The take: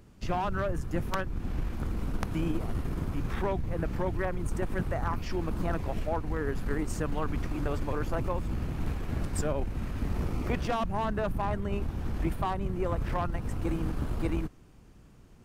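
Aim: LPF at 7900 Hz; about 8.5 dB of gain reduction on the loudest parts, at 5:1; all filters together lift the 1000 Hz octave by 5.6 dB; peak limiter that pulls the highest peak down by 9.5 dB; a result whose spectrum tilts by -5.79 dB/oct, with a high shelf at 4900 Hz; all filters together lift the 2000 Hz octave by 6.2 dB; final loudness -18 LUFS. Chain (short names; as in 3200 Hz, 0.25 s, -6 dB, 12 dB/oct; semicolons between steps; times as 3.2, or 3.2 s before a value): LPF 7900 Hz; bell 1000 Hz +5.5 dB; bell 2000 Hz +5 dB; high shelf 4900 Hz +6.5 dB; compressor 5:1, threshold -33 dBFS; gain +22 dB; limiter -6 dBFS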